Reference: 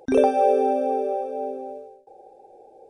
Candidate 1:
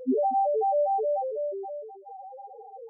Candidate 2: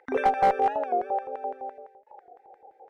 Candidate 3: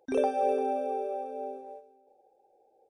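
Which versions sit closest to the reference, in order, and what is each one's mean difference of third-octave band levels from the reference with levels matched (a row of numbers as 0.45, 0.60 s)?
3, 2, 1; 2.0, 5.0, 8.5 dB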